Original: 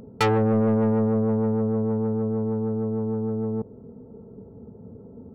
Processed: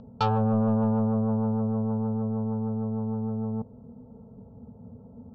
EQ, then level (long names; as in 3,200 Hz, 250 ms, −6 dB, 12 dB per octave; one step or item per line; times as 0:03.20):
low-pass filter 4,500 Hz 24 dB per octave
parametric band 240 Hz +7.5 dB 0.23 octaves
phaser with its sweep stopped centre 840 Hz, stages 4
0.0 dB